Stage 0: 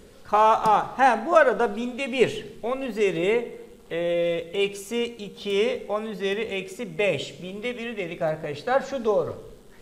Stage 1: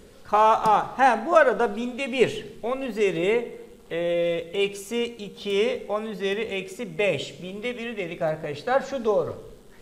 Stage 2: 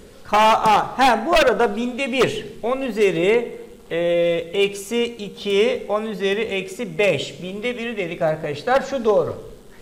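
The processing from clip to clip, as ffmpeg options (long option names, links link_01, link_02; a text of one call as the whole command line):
ffmpeg -i in.wav -af anull out.wav
ffmpeg -i in.wav -af "aeval=exprs='0.2*(abs(mod(val(0)/0.2+3,4)-2)-1)':channel_layout=same,volume=5.5dB" out.wav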